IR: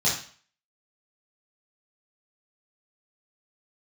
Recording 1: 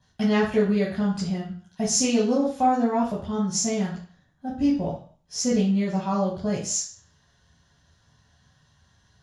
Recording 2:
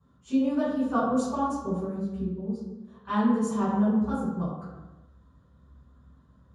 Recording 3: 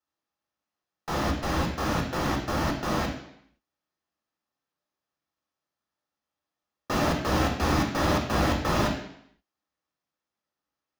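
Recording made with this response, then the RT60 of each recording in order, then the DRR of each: 1; 0.45 s, non-exponential decay, 0.70 s; −8.0, −13.5, 1.0 decibels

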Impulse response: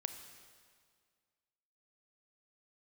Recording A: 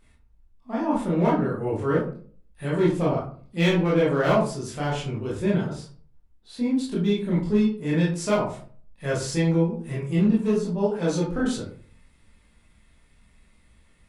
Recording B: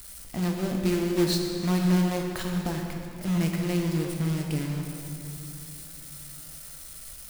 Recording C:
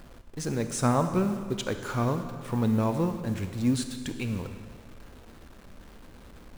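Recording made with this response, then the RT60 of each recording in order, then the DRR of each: C; 0.45, 3.0, 1.9 seconds; −6.5, 1.0, 7.5 decibels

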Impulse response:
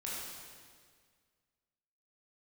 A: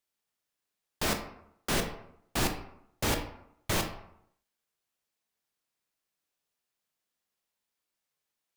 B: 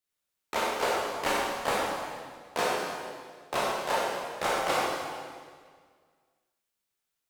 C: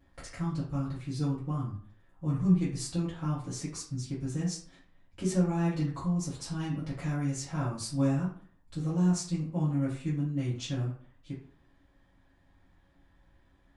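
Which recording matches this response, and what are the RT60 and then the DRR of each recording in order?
B; 0.75, 1.8, 0.50 seconds; 4.5, −6.5, −10.0 decibels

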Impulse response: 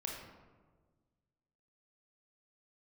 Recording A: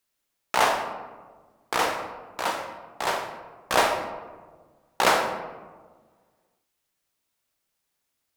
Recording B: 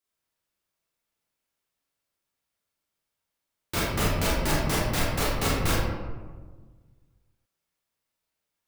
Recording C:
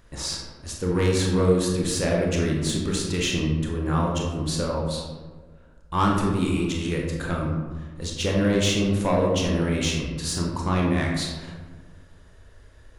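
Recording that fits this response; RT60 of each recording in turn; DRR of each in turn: C; 1.5, 1.5, 1.5 seconds; 4.0, −6.5, −1.5 decibels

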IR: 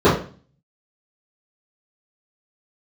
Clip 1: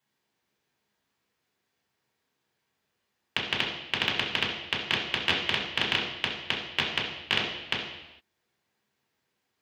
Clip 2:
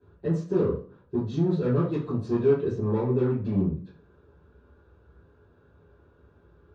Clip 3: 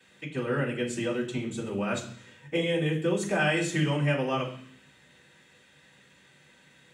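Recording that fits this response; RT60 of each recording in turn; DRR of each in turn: 2; non-exponential decay, 0.40 s, 0.60 s; −5.0, −14.5, −12.5 decibels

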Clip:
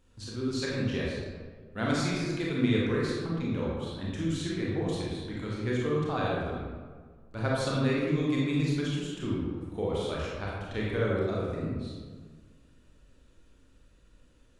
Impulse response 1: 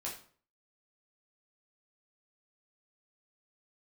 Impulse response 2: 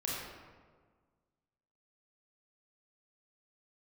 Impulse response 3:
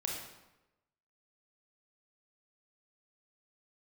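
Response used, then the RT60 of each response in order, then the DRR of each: 2; 0.45, 1.6, 1.0 seconds; −4.5, −5.5, −1.0 decibels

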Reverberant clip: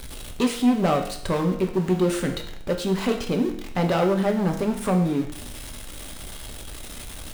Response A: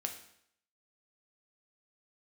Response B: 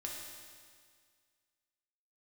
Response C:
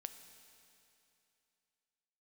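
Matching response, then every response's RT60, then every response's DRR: A; 0.70, 1.9, 2.8 seconds; 3.5, −2.0, 9.0 decibels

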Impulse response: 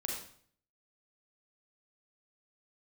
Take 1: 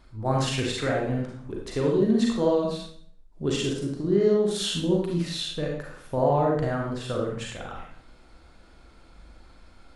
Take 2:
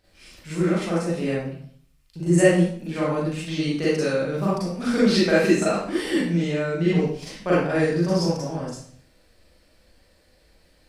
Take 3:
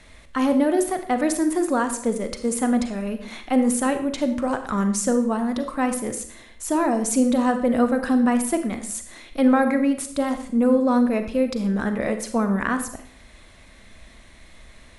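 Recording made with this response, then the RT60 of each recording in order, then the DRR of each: 1; 0.55, 0.55, 0.55 seconds; −1.5, −9.5, 7.5 decibels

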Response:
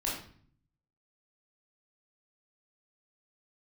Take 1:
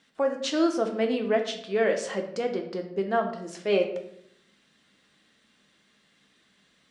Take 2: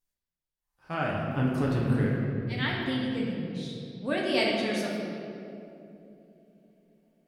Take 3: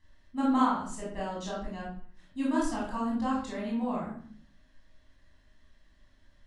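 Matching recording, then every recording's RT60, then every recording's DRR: 3; 0.70, 3.0, 0.50 seconds; 3.0, −4.0, −6.0 decibels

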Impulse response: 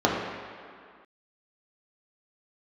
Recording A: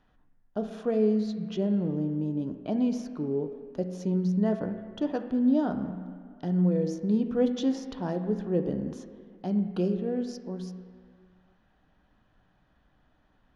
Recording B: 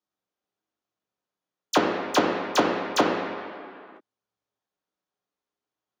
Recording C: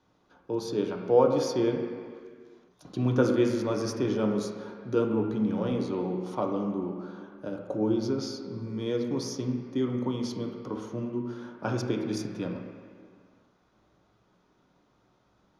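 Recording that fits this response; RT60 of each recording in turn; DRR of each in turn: B; 2.1, 2.1, 2.1 seconds; 5.5, −4.0, 0.5 decibels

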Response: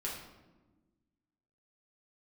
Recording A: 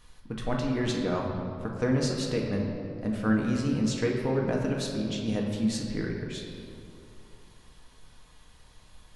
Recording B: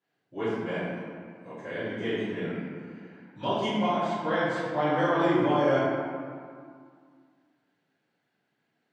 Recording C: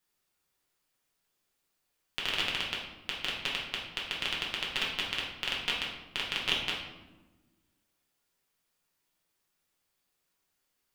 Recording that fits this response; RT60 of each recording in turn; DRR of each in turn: C; 2.8, 2.1, 1.2 seconds; −1.5, −18.0, −5.0 decibels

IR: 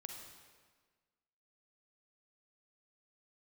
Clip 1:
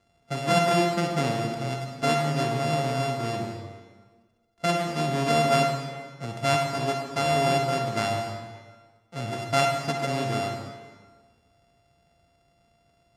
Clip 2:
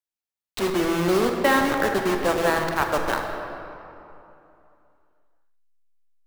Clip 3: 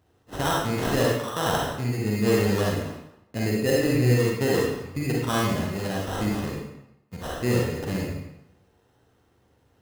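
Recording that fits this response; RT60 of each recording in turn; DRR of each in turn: 1; 1.5, 2.9, 0.85 seconds; 2.0, 3.0, −3.5 decibels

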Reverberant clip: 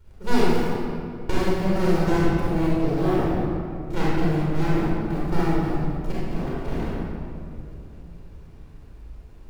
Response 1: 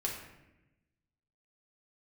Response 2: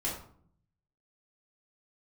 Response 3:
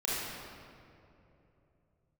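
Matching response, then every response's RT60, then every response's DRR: 3; 0.95, 0.55, 2.9 seconds; −2.5, −7.0, −8.5 decibels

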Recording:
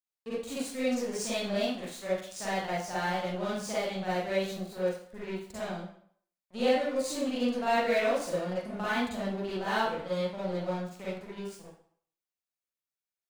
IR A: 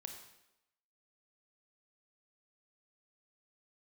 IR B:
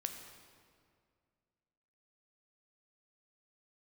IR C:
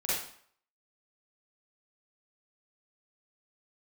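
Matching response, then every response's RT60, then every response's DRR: C; 0.90, 2.1, 0.55 seconds; 4.0, 4.5, −10.0 decibels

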